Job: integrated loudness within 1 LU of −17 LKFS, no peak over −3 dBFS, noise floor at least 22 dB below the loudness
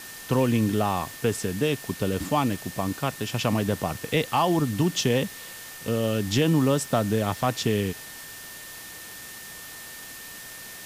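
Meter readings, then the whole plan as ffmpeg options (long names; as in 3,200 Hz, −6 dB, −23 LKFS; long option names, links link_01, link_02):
interfering tone 1,800 Hz; level of the tone −45 dBFS; background noise floor −41 dBFS; target noise floor −48 dBFS; integrated loudness −25.5 LKFS; sample peak −12.0 dBFS; target loudness −17.0 LKFS
→ -af "bandreject=frequency=1800:width=30"
-af "afftdn=noise_reduction=7:noise_floor=-41"
-af "volume=8.5dB"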